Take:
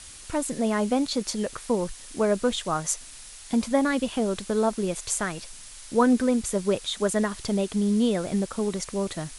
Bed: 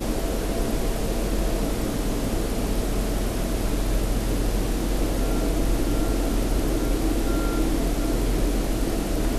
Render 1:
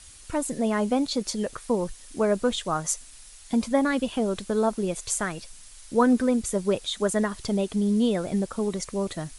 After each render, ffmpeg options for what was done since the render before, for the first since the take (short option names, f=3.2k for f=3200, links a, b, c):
-af "afftdn=nr=6:nf=-44"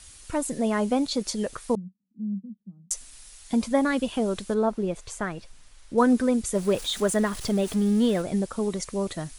-filter_complex "[0:a]asettb=1/sr,asplit=3[a][b][c];[a]atrim=end=1.754[d];[b]atrim=start=1.75:end=2.91,asetpts=PTS-STARTPTS,afade=t=in:d=0.004:c=qsin,afade=t=out:st=1.156:d=0.004:c=qsin,asuperpass=centerf=200:order=4:qfactor=5.3[e];[c]atrim=start=2.906[f];[d][e]acrossfade=d=0.004:c1=hsin:c2=qsin[g];[g][f]acrossfade=d=0.004:c1=qsin:c2=hsin,asettb=1/sr,asplit=3[h][i][j];[h]atrim=end=4.544[k];[i]atrim=start=4.54:end=5.98,asetpts=PTS-STARTPTS,afade=t=in:d=0.004:c=qsin,afade=t=out:st=1.436:d=0.004:c=qsin,lowpass=f=1.9k:p=1[l];[j]atrim=start=5.976[m];[k][l]acrossfade=d=0.004:c1=hsin:c2=qsin[n];[n][m]acrossfade=d=0.004:c1=qsin:c2=hsin,asettb=1/sr,asplit=3[o][p][q];[o]atrim=end=6.554[r];[p]atrim=start=6.55:end=8.22,asetpts=PTS-STARTPTS,afade=t=in:d=0.004:c=qsin,afade=t=out:st=1.666:d=0.004:c=qsin,aeval=exprs='val(0)+0.5*0.0178*sgn(val(0))':c=same[s];[q]atrim=start=8.216[t];[r][s]acrossfade=d=0.004:c1=hsin:c2=qsin[u];[u][t]acrossfade=d=0.004:c1=qsin:c2=hsin"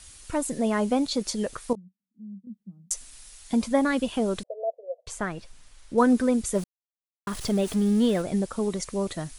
-filter_complex "[0:a]asettb=1/sr,asplit=3[a][b][c];[a]atrim=end=4.434[d];[b]atrim=start=4.43:end=5.07,asetpts=PTS-STARTPTS,afade=t=in:d=0.004:c=qsin,afade=t=out:st=0.636:d=0.004:c=qsin,asuperpass=centerf=580:order=8:qfactor=2.6[e];[c]atrim=start=5.066[f];[d][e]acrossfade=d=0.004:c1=hsin:c2=qsin[g];[g][f]acrossfade=d=0.004:c1=qsin:c2=hsin,asplit=5[h][i][j][k][l];[h]atrim=end=1.732[m];[i]atrim=start=1.728:end=2.472,asetpts=PTS-STARTPTS,volume=-10.5dB[n];[j]atrim=start=2.468:end=6.64,asetpts=PTS-STARTPTS,afade=t=out:st=4.168:d=0.004:c=hsin[o];[k]atrim=start=6.64:end=7.27,asetpts=PTS-STARTPTS,volume=0[p];[l]atrim=start=7.27,asetpts=PTS-STARTPTS,afade=t=in:d=0.004:c=hsin[q];[m][n]acrossfade=d=0.004:c1=hsin:c2=hsin[r];[o][p][q]concat=n=3:v=0:a=1[s];[r][s]acrossfade=d=0.004:c1=hsin:c2=hsin"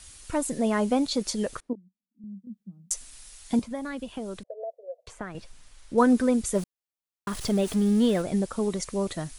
-filter_complex "[0:a]asettb=1/sr,asplit=3[a][b][c];[a]atrim=end=1.604[d];[b]atrim=start=1.6:end=2.24,asetpts=PTS-STARTPTS,afade=t=in:d=0.004:c=qsin,afade=t=out:st=0.636:d=0.004:c=qsin,bandpass=f=280:t=q:w=2.5[e];[c]atrim=start=2.236[f];[d][e]acrossfade=d=0.004:c1=hsin:c2=qsin[g];[g][f]acrossfade=d=0.004:c1=qsin:c2=hsin,asettb=1/sr,asplit=3[h][i][j];[h]atrim=end=3.594[k];[i]atrim=start=3.59:end=5.35,asetpts=PTS-STARTPTS,afade=t=in:d=0.004:c=qsin,afade=t=out:st=1.756:d=0.004:c=qsin,acrossover=split=110|2700[l][m][n];[l]acompressor=threshold=-50dB:ratio=4[o];[m]acompressor=threshold=-34dB:ratio=4[p];[n]acompressor=threshold=-53dB:ratio=4[q];[o][p][q]amix=inputs=3:normalize=0[r];[j]atrim=start=5.346[s];[k][r]acrossfade=d=0.004:c1=hsin:c2=qsin[t];[t][s]acrossfade=d=0.004:c1=qsin:c2=hsin"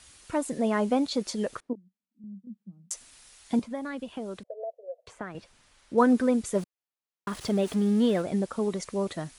-af "highpass=f=150:p=1,highshelf=f=5.1k:g=-8.5"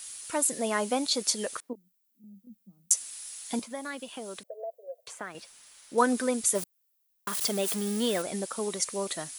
-af "aemphasis=mode=production:type=riaa"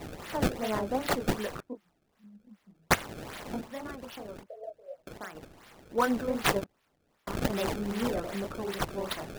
-filter_complex "[0:a]acrossover=split=1600[a][b];[a]flanger=delay=18.5:depth=7.2:speed=2.8[c];[b]acrusher=samples=26:mix=1:aa=0.000001:lfo=1:lforange=41.6:lforate=2.6[d];[c][d]amix=inputs=2:normalize=0"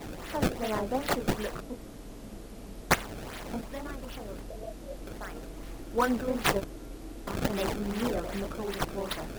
-filter_complex "[1:a]volume=-19.5dB[a];[0:a][a]amix=inputs=2:normalize=0"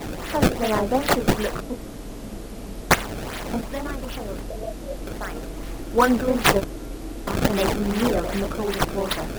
-af "volume=9dB,alimiter=limit=-2dB:level=0:latency=1"